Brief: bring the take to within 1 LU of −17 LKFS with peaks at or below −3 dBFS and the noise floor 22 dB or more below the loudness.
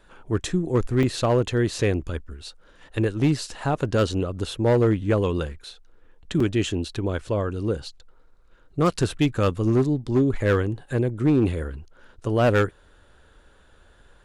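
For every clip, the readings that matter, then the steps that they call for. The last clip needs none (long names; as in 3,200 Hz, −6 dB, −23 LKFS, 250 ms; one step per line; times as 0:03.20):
share of clipped samples 0.9%; peaks flattened at −13.5 dBFS; number of dropouts 2; longest dropout 3.9 ms; integrated loudness −24.0 LKFS; sample peak −13.5 dBFS; target loudness −17.0 LKFS
→ clipped peaks rebuilt −13.5 dBFS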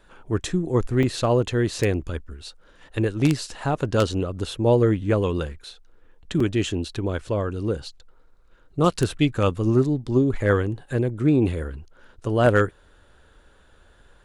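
share of clipped samples 0.0%; number of dropouts 2; longest dropout 3.9 ms
→ repair the gap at 0:01.03/0:06.40, 3.9 ms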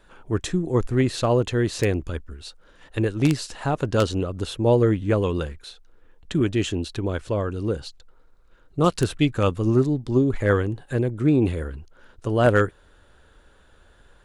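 number of dropouts 0; integrated loudness −23.5 LKFS; sample peak −4.5 dBFS; target loudness −17.0 LKFS
→ level +6.5 dB
brickwall limiter −3 dBFS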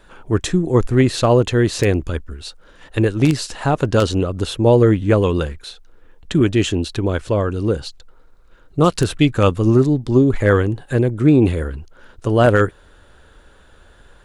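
integrated loudness −17.5 LKFS; sample peak −3.0 dBFS; background noise floor −49 dBFS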